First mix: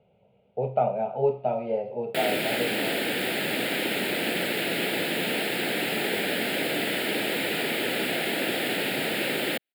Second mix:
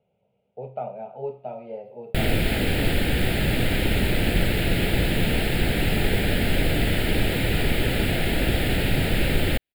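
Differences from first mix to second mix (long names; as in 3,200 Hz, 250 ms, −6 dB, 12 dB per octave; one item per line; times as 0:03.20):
speech −8.0 dB
background: remove Bessel high-pass filter 320 Hz, order 4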